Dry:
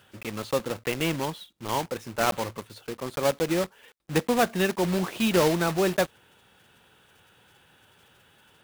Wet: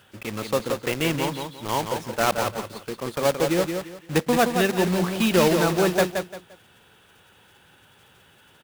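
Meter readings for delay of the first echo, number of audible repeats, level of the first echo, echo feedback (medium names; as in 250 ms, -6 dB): 173 ms, 3, -6.0 dB, 27%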